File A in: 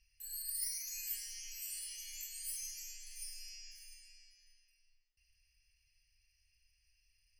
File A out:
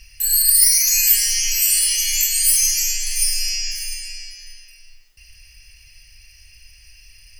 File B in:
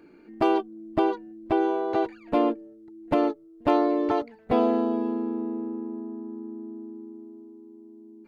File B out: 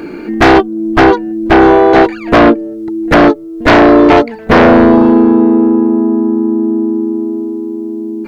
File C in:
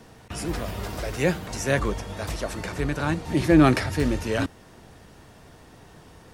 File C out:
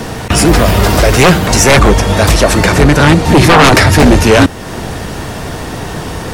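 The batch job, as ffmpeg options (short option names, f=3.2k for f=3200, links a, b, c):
-filter_complex "[0:a]asplit=2[a][b];[b]acompressor=threshold=-39dB:ratio=6,volume=1.5dB[c];[a][c]amix=inputs=2:normalize=0,aeval=exprs='0.668*sin(PI/2*5.62*val(0)/0.668)':c=same,volume=2.5dB"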